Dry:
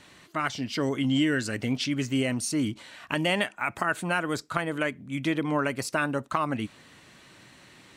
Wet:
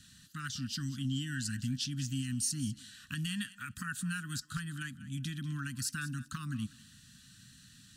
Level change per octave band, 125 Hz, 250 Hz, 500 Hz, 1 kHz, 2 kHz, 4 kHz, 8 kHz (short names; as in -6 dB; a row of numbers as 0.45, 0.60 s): -2.5 dB, -10.5 dB, under -35 dB, -18.0 dB, -11.5 dB, -6.5 dB, -0.5 dB